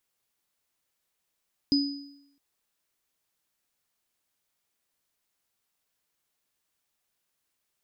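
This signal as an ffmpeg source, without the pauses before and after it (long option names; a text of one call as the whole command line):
ffmpeg -f lavfi -i "aevalsrc='0.112*pow(10,-3*t/0.8)*sin(2*PI*281*t)+0.0708*pow(10,-3*t/0.71)*sin(2*PI*4980*t)':duration=0.66:sample_rate=44100" out.wav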